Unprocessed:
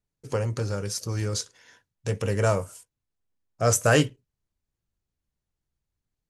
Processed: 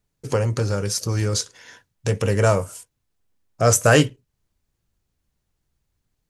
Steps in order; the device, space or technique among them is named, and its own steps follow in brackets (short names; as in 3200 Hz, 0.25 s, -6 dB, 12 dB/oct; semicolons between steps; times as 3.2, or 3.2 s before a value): parallel compression (in parallel at -1 dB: compressor, threshold -36 dBFS, peak gain reduction 19.5 dB); on the sum: gain +4 dB